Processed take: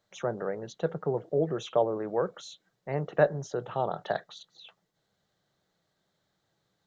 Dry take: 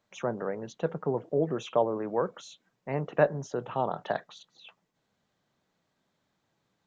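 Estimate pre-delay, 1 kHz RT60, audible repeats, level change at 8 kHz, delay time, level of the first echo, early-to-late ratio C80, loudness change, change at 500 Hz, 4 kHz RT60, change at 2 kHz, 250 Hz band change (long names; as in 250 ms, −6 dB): no reverb audible, no reverb audible, no echo audible, can't be measured, no echo audible, no echo audible, no reverb audible, 0.0 dB, +0.5 dB, no reverb audible, 0.0 dB, −1.5 dB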